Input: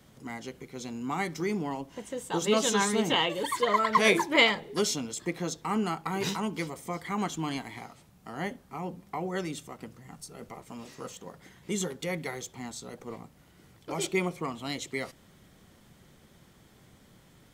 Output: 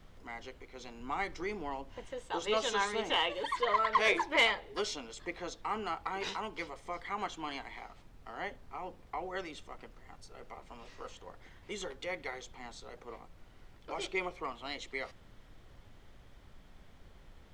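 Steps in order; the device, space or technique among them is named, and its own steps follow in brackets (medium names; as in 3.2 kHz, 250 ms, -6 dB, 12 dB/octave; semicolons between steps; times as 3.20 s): aircraft cabin announcement (band-pass 480–4100 Hz; saturation -14.5 dBFS, distortion -19 dB; brown noise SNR 16 dB); 1.00–2.05 s: bass shelf 190 Hz +5.5 dB; trim -2.5 dB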